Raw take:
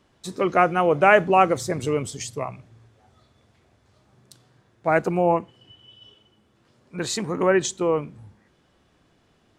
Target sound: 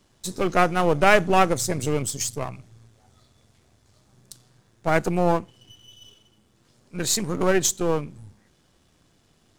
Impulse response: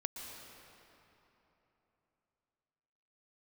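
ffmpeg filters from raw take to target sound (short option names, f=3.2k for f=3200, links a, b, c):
-af "aeval=exprs='if(lt(val(0),0),0.447*val(0),val(0))':c=same,bass=f=250:g=4,treble=f=4k:g=11"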